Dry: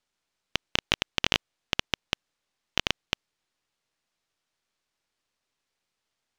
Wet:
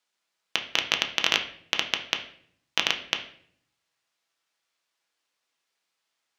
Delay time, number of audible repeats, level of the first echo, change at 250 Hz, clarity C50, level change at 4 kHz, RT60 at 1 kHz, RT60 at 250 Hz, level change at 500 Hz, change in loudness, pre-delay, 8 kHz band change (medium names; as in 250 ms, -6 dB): no echo, no echo, no echo, -4.0 dB, 10.5 dB, +3.5 dB, 0.50 s, 0.90 s, 0.0 dB, +3.0 dB, 6 ms, +2.5 dB